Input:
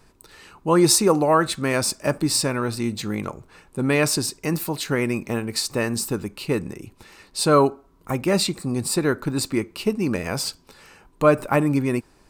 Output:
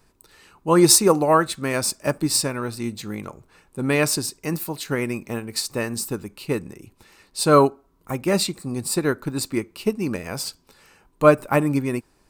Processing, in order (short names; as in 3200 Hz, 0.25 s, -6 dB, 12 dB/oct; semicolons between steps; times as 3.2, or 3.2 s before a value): high shelf 10000 Hz +6 dB; upward expander 1.5:1, over -28 dBFS; gain +3 dB